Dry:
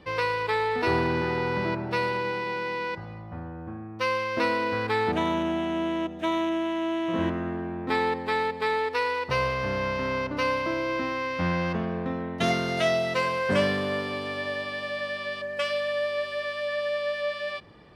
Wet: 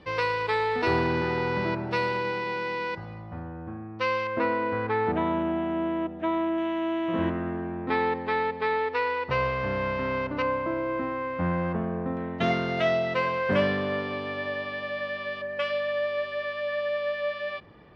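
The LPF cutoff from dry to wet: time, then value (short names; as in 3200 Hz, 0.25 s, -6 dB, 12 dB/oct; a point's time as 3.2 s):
6700 Hz
from 3.42 s 4100 Hz
from 4.27 s 1800 Hz
from 6.58 s 2900 Hz
from 10.42 s 1500 Hz
from 12.17 s 3000 Hz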